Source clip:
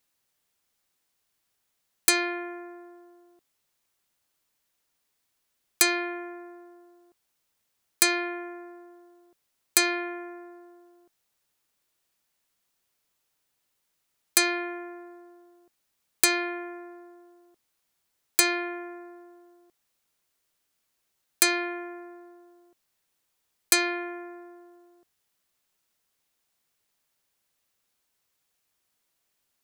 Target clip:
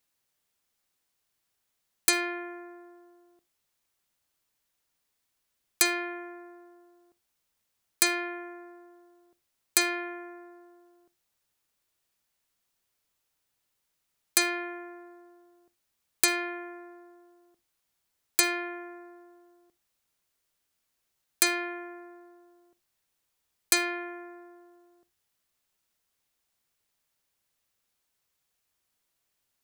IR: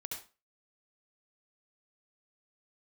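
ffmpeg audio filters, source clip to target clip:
-filter_complex "[0:a]asplit=2[link_01][link_02];[link_02]asubboost=boost=7:cutoff=190[link_03];[1:a]atrim=start_sample=2205,asetrate=66150,aresample=44100[link_04];[link_03][link_04]afir=irnorm=-1:irlink=0,volume=-13.5dB[link_05];[link_01][link_05]amix=inputs=2:normalize=0,volume=-3dB"

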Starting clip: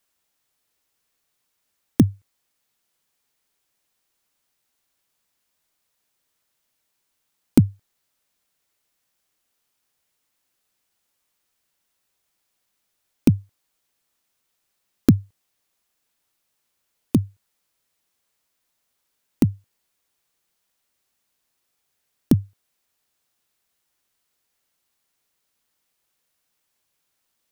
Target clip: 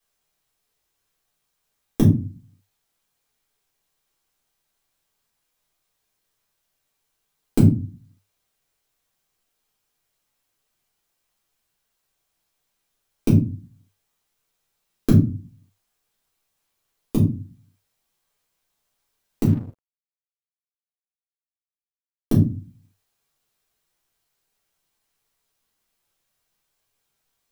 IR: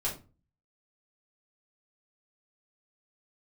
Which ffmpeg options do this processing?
-filter_complex "[1:a]atrim=start_sample=2205[link_01];[0:a][link_01]afir=irnorm=-1:irlink=0,asettb=1/sr,asplit=3[link_02][link_03][link_04];[link_02]atrim=end=19.474[link_05];[link_03]atrim=start=19.47:end=22.35,asetpts=PTS-STARTPTS,afade=type=in:duration=0.004:curve=qsin,afade=type=out:start_time=2.876:duration=0.004:curve=qsin,aeval=exprs='sgn(val(0))*max(abs(val(0))-0.0188,0)':channel_layout=same[link_06];[link_04]atrim=start=22.346[link_07];[link_05][link_06]acrossfade=duration=0.004:curve1=hsin:curve2=qsin[link_08];[link_08][link_07]acrossfade=duration=0.004:curve1=qsin:curve2=hsin,volume=-4.5dB"

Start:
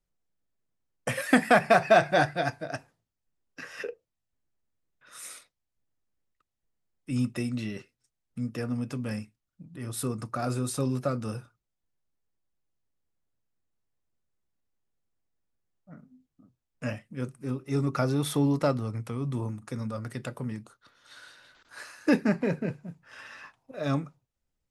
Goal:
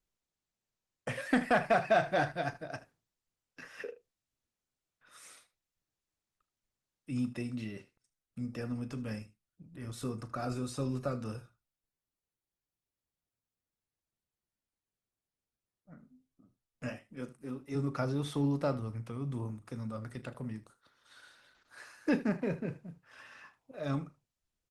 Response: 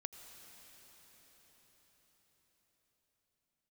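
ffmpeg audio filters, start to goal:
-filter_complex "[0:a]asplit=3[link_01][link_02][link_03];[link_01]afade=type=out:start_time=16.88:duration=0.02[link_04];[link_02]highpass=190,afade=type=in:start_time=16.88:duration=0.02,afade=type=out:start_time=17.74:duration=0.02[link_05];[link_03]afade=type=in:start_time=17.74:duration=0.02[link_06];[link_04][link_05][link_06]amix=inputs=3:normalize=0,acrossover=split=8000[link_07][link_08];[link_08]acompressor=threshold=-59dB:ratio=4:attack=1:release=60[link_09];[link_07][link_09]amix=inputs=2:normalize=0,aecho=1:1:36|77:0.168|0.141,asoftclip=type=tanh:threshold=-8.5dB,volume=-6dB" -ar 48000 -c:a libopus -b:a 20k

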